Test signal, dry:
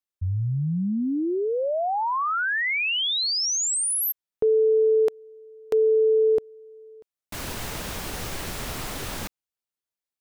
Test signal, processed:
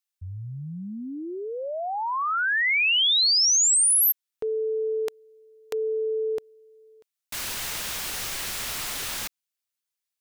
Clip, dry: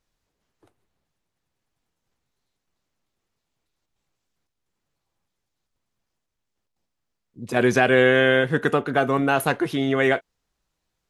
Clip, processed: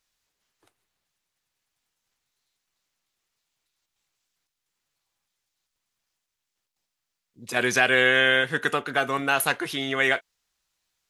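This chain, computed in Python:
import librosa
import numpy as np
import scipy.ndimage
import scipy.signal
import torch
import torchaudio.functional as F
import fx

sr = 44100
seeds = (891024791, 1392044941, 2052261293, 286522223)

y = fx.tilt_shelf(x, sr, db=-8.0, hz=970.0)
y = y * librosa.db_to_amplitude(-2.5)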